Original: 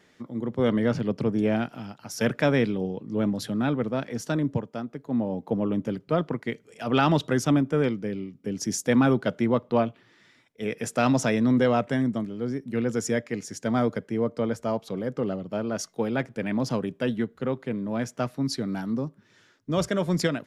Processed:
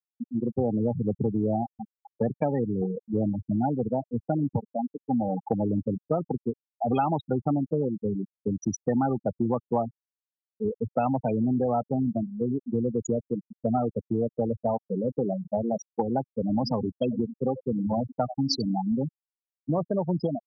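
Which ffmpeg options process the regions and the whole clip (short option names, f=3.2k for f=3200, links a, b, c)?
-filter_complex "[0:a]asettb=1/sr,asplit=3[a][b][c];[a]atrim=end=16.524[d];[b]atrim=start=16.52:end=18.73,asetpts=PTS-STARTPTS,afade=t=in:d=0.004:c=qsin,afade=t=out:st=2.206:d=0.004:c=qsin,equalizer=f=5.3k:t=o:w=2.5:g=9.5,aecho=1:1:91:0.282,atrim=end_sample=97461[e];[c]atrim=start=18.726[f];[d][e]acrossfade=d=0.004:c1=hsin:c2=qsin[g];[g][f]acrossfade=d=0.004:c1=qsin:c2=hsin,equalizer=f=100:t=o:w=0.33:g=7,equalizer=f=800:t=o:w=0.33:g=12,equalizer=f=1.6k:t=o:w=0.33:g=-6,afftfilt=real='re*gte(hypot(re,im),0.158)':imag='im*gte(hypot(re,im),0.158)':win_size=1024:overlap=0.75,acompressor=threshold=-28dB:ratio=5,volume=5dB"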